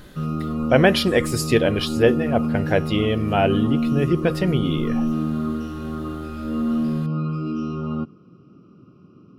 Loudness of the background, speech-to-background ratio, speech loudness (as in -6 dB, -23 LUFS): -25.5 LUFS, 4.5 dB, -21.0 LUFS